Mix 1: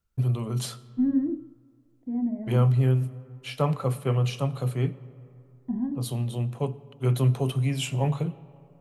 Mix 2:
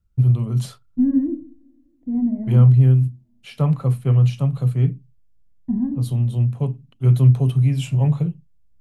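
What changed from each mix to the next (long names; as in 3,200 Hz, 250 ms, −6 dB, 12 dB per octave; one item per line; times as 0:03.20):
first voice: send off
master: add bass and treble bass +13 dB, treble −1 dB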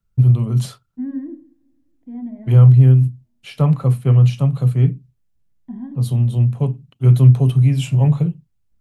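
first voice +3.5 dB
second voice: add spectral tilt +4.5 dB per octave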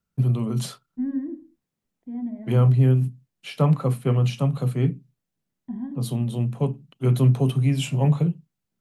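first voice: add high-pass filter 160 Hz 24 dB per octave
reverb: off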